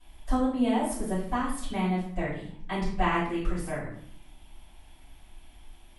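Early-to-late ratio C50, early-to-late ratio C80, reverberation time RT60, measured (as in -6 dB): 3.0 dB, 6.5 dB, 0.55 s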